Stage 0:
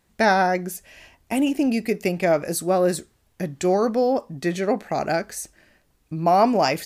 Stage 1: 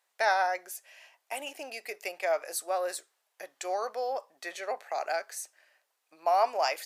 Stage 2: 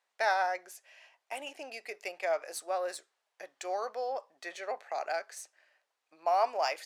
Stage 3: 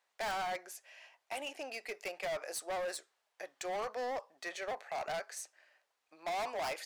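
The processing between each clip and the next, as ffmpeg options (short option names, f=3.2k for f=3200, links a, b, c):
-af "highpass=f=590:w=0.5412,highpass=f=590:w=1.3066,volume=-6.5dB"
-af "adynamicsmooth=sensitivity=8:basefreq=7.5k,volume=-2.5dB"
-af "volume=35.5dB,asoftclip=hard,volume=-35.5dB,volume=1dB"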